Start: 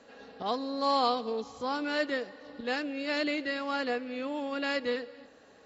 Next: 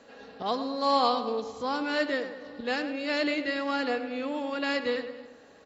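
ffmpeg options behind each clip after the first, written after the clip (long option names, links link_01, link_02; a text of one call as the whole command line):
ffmpeg -i in.wav -filter_complex "[0:a]asplit=2[link_01][link_02];[link_02]adelay=104,lowpass=frequency=2600:poles=1,volume=-9.5dB,asplit=2[link_03][link_04];[link_04]adelay=104,lowpass=frequency=2600:poles=1,volume=0.5,asplit=2[link_05][link_06];[link_06]adelay=104,lowpass=frequency=2600:poles=1,volume=0.5,asplit=2[link_07][link_08];[link_08]adelay=104,lowpass=frequency=2600:poles=1,volume=0.5,asplit=2[link_09][link_10];[link_10]adelay=104,lowpass=frequency=2600:poles=1,volume=0.5,asplit=2[link_11][link_12];[link_12]adelay=104,lowpass=frequency=2600:poles=1,volume=0.5[link_13];[link_01][link_03][link_05][link_07][link_09][link_11][link_13]amix=inputs=7:normalize=0,volume=2dB" out.wav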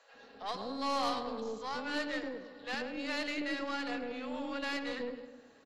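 ffmpeg -i in.wav -filter_complex "[0:a]asoftclip=type=tanh:threshold=-19.5dB,acrossover=split=560[link_01][link_02];[link_01]adelay=140[link_03];[link_03][link_02]amix=inputs=2:normalize=0,aeval=exprs='0.168*(cos(1*acos(clip(val(0)/0.168,-1,1)))-cos(1*PI/2))+0.0133*(cos(6*acos(clip(val(0)/0.168,-1,1)))-cos(6*PI/2))':channel_layout=same,volume=-5.5dB" out.wav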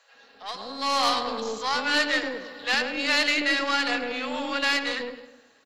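ffmpeg -i in.wav -af "tiltshelf=frequency=840:gain=-6,dynaudnorm=framelen=260:gausssize=7:maxgain=11dB" out.wav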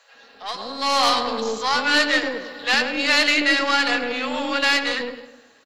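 ffmpeg -i in.wav -filter_complex "[0:a]asplit=2[link_01][link_02];[link_02]adelay=13,volume=-13.5dB[link_03];[link_01][link_03]amix=inputs=2:normalize=0,volume=5dB" out.wav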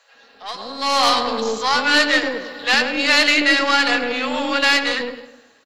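ffmpeg -i in.wav -af "dynaudnorm=framelen=370:gausssize=5:maxgain=11.5dB,volume=-1dB" out.wav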